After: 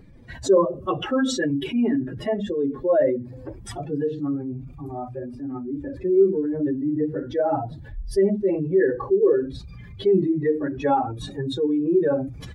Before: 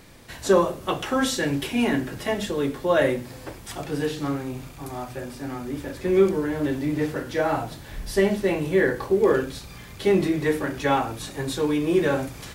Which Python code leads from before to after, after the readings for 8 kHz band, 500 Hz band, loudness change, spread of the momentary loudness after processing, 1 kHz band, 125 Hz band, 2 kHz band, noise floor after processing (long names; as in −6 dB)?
can't be measured, +1.5 dB, +1.0 dB, 14 LU, −0.5 dB, −1.0 dB, −7.0 dB, −41 dBFS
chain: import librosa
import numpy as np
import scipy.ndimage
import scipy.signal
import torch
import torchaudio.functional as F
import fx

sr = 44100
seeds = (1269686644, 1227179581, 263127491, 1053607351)

y = fx.spec_expand(x, sr, power=2.2)
y = F.gain(torch.from_numpy(y), 1.5).numpy()